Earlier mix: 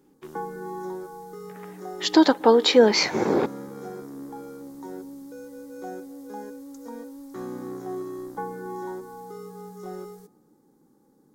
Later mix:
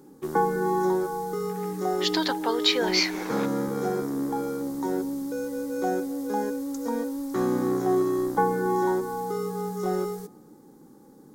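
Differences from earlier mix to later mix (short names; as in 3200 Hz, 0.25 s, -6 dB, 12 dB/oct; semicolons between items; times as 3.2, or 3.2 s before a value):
speech: add band-pass 3300 Hz, Q 0.63; background +10.0 dB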